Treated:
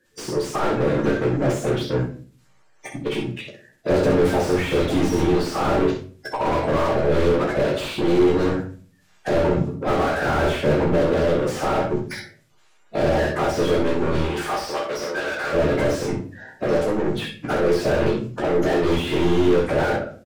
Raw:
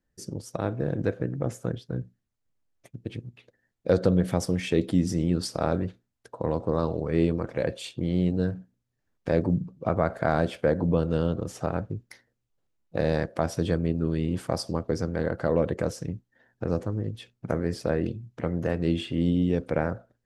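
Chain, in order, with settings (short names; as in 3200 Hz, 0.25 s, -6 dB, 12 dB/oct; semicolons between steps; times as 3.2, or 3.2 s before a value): bin magnitudes rounded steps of 30 dB; downsampling 32000 Hz; overdrive pedal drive 24 dB, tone 7100 Hz, clips at -18.5 dBFS; 14.23–15.52 HPF 650 Hz -> 1400 Hz 6 dB/oct; early reflections 14 ms -4 dB, 64 ms -7 dB; shoebox room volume 31 m³, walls mixed, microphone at 0.47 m; slew limiter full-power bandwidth 83 Hz; gain +1.5 dB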